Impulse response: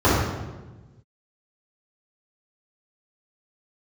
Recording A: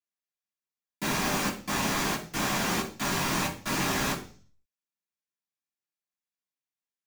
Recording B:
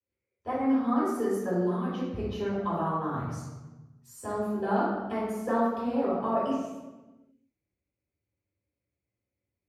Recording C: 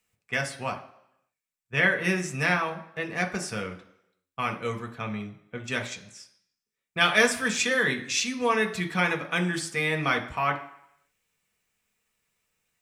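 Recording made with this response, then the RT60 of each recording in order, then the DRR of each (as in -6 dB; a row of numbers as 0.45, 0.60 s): B; 0.40 s, 1.2 s, not exponential; -8.0, -12.5, 2.5 dB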